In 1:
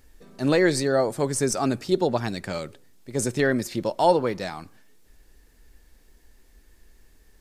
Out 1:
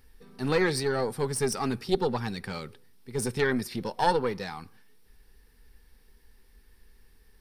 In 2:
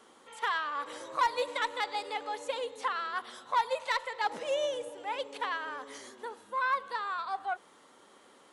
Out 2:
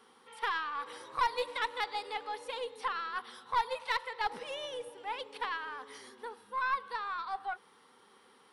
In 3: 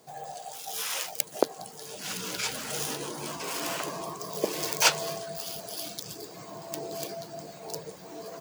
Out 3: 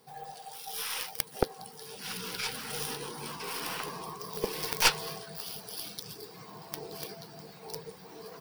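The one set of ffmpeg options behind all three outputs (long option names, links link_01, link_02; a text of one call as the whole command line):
ffmpeg -i in.wav -af "superequalizer=6b=0.501:8b=0.316:15b=0.316,aeval=exprs='0.944*(cos(1*acos(clip(val(0)/0.944,-1,1)))-cos(1*PI/2))+0.0668*(cos(5*acos(clip(val(0)/0.944,-1,1)))-cos(5*PI/2))+0.266*(cos(6*acos(clip(val(0)/0.944,-1,1)))-cos(6*PI/2))+0.0531*(cos(7*acos(clip(val(0)/0.944,-1,1)))-cos(7*PI/2))+0.0841*(cos(8*acos(clip(val(0)/0.944,-1,1)))-cos(8*PI/2))':channel_layout=same,volume=-2dB" out.wav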